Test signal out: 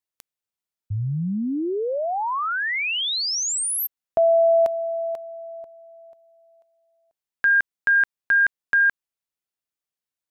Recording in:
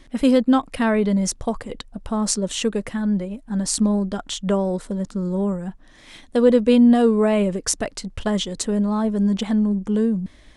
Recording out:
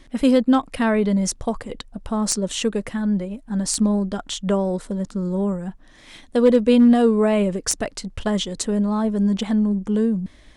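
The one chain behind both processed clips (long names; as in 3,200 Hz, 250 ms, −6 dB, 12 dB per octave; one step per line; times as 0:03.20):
wavefolder on the positive side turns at −9 dBFS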